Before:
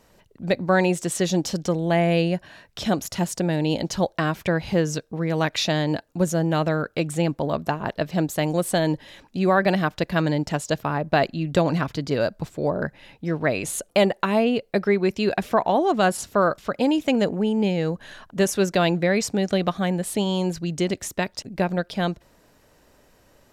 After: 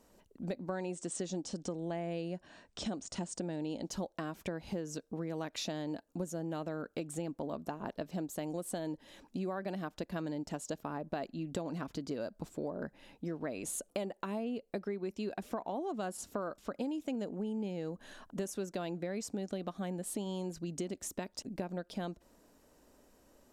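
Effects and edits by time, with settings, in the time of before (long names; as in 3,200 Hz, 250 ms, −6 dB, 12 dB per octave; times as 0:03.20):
0:00.69–0:03.83: linear-phase brick-wall low-pass 9,600 Hz
whole clip: octave-band graphic EQ 125/250/2,000/4,000/8,000 Hz −8/+6/−5/−3/+3 dB; downward compressor 5 to 1, threshold −28 dBFS; level −7.5 dB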